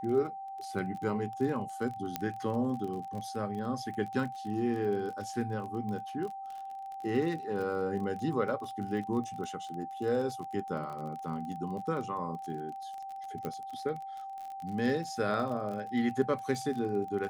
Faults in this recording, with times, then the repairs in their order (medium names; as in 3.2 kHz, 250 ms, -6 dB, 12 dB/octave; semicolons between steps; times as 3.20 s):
crackle 30 per s -38 dBFS
whine 780 Hz -39 dBFS
2.16 s: pop -15 dBFS
13.45 s: pop -23 dBFS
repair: de-click; band-stop 780 Hz, Q 30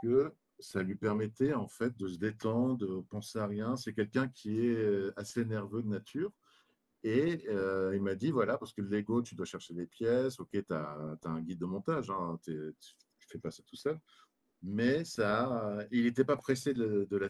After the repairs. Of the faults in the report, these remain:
2.16 s: pop